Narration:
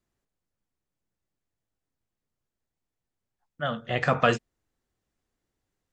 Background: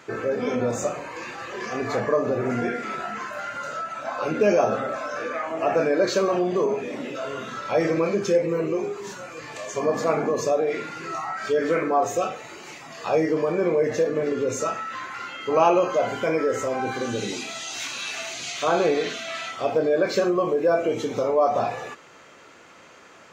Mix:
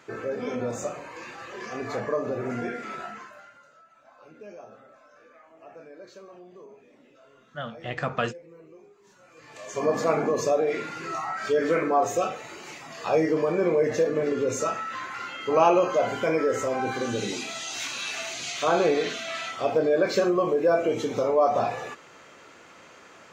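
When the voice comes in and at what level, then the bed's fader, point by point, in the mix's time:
3.95 s, -5.5 dB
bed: 3.05 s -5.5 dB
3.70 s -25 dB
8.98 s -25 dB
9.84 s -1 dB

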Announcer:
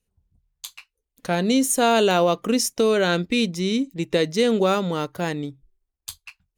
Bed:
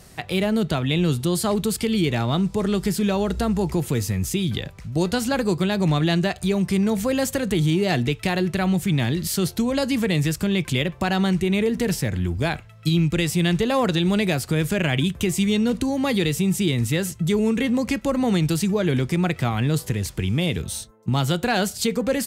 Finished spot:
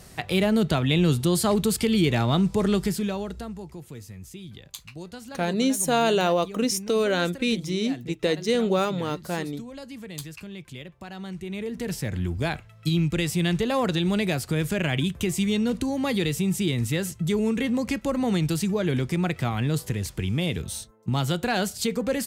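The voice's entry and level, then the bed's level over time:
4.10 s, -3.5 dB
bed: 2.73 s 0 dB
3.70 s -17.5 dB
11.12 s -17.5 dB
12.19 s -3.5 dB

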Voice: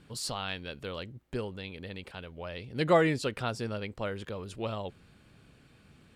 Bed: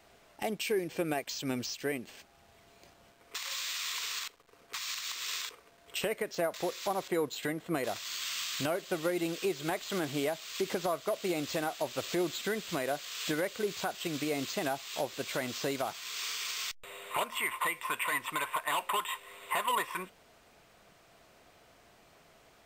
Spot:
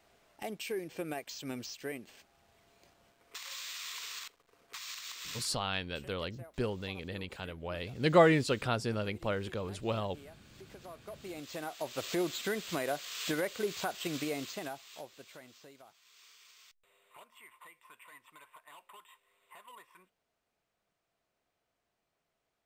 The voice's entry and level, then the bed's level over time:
5.25 s, +1.0 dB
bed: 5.36 s -6 dB
5.76 s -21.5 dB
10.57 s -21.5 dB
12.07 s -1 dB
14.17 s -1 dB
15.74 s -23 dB

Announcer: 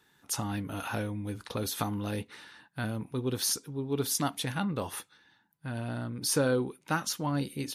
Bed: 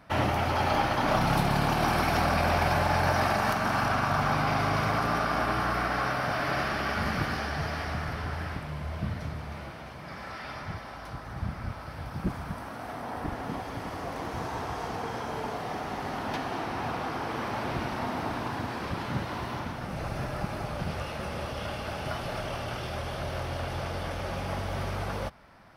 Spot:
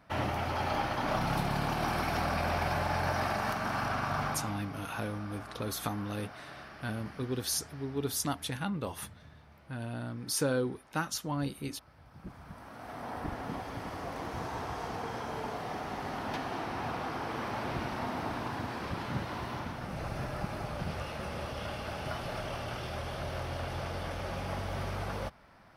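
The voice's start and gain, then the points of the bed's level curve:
4.05 s, -3.0 dB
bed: 4.25 s -6 dB
4.64 s -19 dB
12.02 s -19 dB
13.05 s -3.5 dB

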